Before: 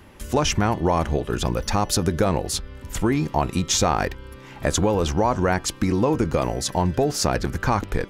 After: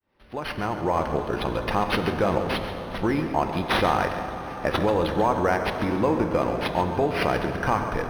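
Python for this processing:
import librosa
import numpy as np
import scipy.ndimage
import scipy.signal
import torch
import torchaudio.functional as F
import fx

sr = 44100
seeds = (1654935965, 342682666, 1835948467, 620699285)

y = fx.fade_in_head(x, sr, length_s=1.07)
y = fx.low_shelf(y, sr, hz=240.0, db=-9.0)
y = y + 10.0 ** (-11.5 / 20.0) * np.pad(y, (int(137 * sr / 1000.0), 0))[:len(y)]
y = fx.rev_plate(y, sr, seeds[0], rt60_s=4.7, hf_ratio=0.5, predelay_ms=0, drr_db=6.0)
y = np.interp(np.arange(len(y)), np.arange(len(y))[::6], y[::6])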